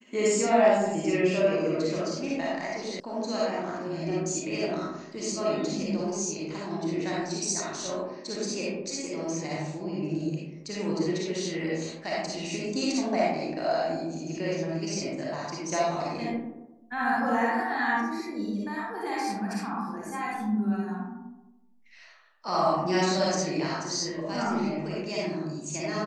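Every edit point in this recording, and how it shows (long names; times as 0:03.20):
0:03.00: cut off before it has died away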